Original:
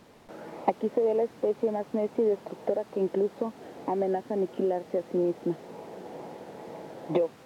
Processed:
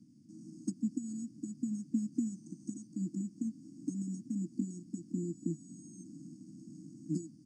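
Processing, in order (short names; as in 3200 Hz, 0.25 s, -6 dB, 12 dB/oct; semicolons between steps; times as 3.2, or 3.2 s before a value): 5.32–6.04 painted sound rise 410–1000 Hz -33 dBFS; HPF 120 Hz 24 dB/oct; 2.14–2.87 bell 1200 Hz +14.5 dB 0.59 oct; speakerphone echo 0.28 s, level -28 dB; careless resampling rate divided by 6×, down filtered, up hold; brick-wall FIR band-stop 330–4500 Hz; high shelf 3500 Hz -12 dB; Nellymoser 44 kbps 22050 Hz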